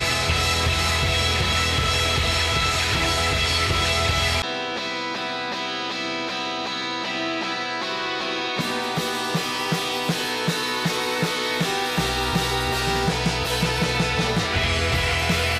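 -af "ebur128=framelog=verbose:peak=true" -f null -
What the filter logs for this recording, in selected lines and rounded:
Integrated loudness:
  I:         -22.1 LUFS
  Threshold: -32.1 LUFS
Loudness range:
  LRA:         5.6 LU
  Threshold: -42.5 LUFS
  LRA low:   -25.4 LUFS
  LRA high:  -19.9 LUFS
True peak:
  Peak:      -12.1 dBFS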